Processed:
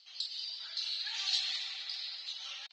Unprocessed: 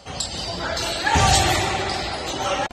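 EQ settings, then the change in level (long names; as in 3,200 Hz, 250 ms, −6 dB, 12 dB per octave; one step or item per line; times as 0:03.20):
four-pole ladder band-pass 4,800 Hz, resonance 55%
high-frequency loss of the air 210 metres
+4.5 dB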